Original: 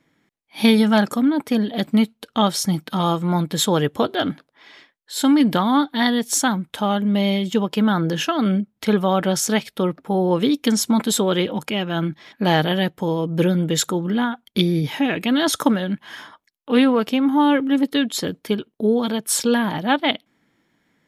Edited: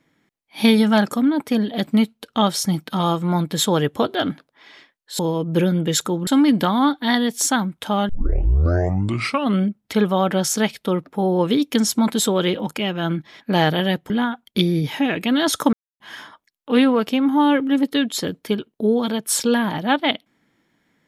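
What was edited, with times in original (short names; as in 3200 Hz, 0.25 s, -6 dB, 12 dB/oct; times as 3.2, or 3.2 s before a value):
7.01 tape start 1.52 s
13.02–14.1 move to 5.19
15.73–16 mute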